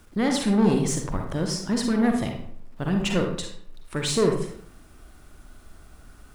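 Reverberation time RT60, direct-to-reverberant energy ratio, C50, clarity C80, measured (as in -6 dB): 0.60 s, 2.0 dB, 4.0 dB, 8.5 dB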